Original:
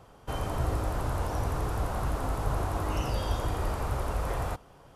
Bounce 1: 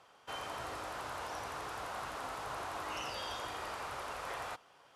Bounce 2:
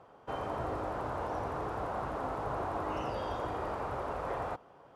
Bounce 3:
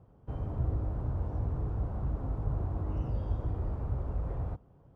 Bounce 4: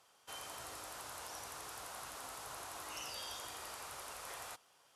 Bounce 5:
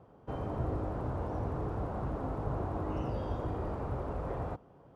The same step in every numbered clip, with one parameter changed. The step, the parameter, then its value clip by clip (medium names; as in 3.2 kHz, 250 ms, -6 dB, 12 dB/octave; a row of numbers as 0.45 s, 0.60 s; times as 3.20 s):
band-pass filter, frequency: 2.9 kHz, 720 Hz, 100 Hz, 7.4 kHz, 260 Hz